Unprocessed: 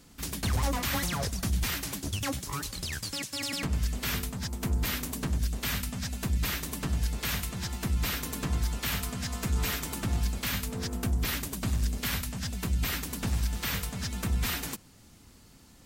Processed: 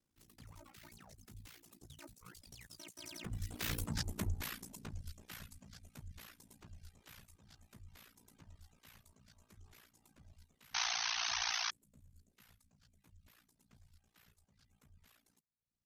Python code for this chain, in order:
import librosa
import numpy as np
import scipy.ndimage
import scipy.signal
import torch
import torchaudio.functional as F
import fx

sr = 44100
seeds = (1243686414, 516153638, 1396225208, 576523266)

y = fx.doppler_pass(x, sr, speed_mps=37, closest_m=7.3, pass_at_s=3.94)
y = fx.spec_paint(y, sr, seeds[0], shape='noise', start_s=10.74, length_s=0.97, low_hz=690.0, high_hz=6400.0, level_db=-33.0)
y = fx.dereverb_blind(y, sr, rt60_s=0.8)
y = y * np.sin(2.0 * np.pi * 29.0 * np.arange(len(y)) / sr)
y = y * librosa.db_to_amplitude(1.0)